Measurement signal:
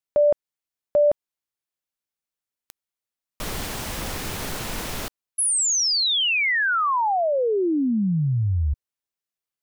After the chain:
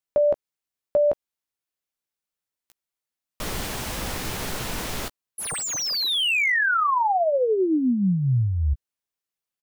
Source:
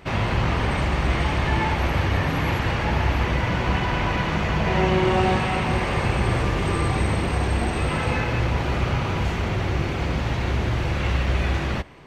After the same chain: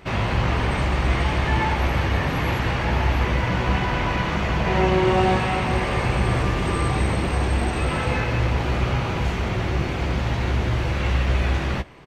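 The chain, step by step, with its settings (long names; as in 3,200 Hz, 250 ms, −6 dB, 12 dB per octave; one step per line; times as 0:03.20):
double-tracking delay 16 ms −11 dB
slew-rate limiting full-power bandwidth 270 Hz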